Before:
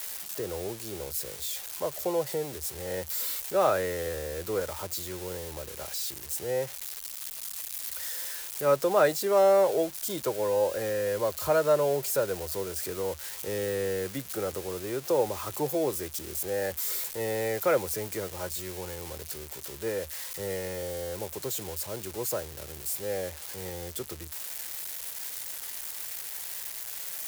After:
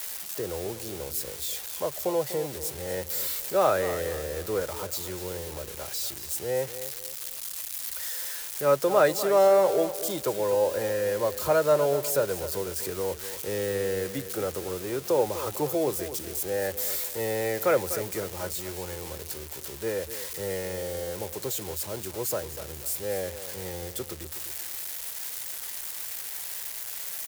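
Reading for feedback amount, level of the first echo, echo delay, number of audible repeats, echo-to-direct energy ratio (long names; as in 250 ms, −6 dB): 35%, −12.5 dB, 247 ms, 3, −12.0 dB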